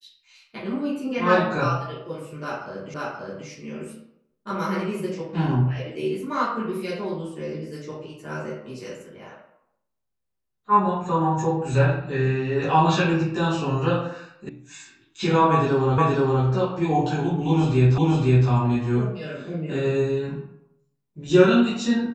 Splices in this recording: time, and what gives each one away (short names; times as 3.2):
2.94 repeat of the last 0.53 s
14.49 sound cut off
15.98 repeat of the last 0.47 s
17.98 repeat of the last 0.51 s